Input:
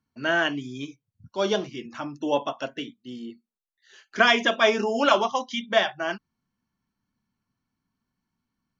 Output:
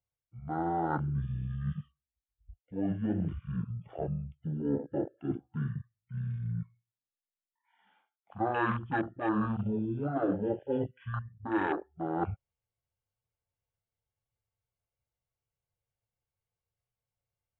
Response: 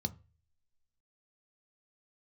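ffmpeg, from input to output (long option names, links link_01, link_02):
-af "afwtdn=0.0355,areverse,acompressor=threshold=-36dB:ratio=4,areverse,asetrate=22050,aresample=44100,volume=5dB"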